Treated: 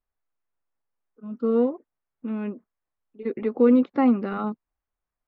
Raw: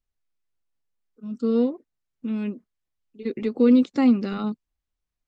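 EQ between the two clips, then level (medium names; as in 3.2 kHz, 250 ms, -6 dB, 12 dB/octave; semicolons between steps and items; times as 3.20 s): low-pass 1 kHz 12 dB/octave; distance through air 110 m; tilt shelf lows -9.5 dB, about 630 Hz; +5.0 dB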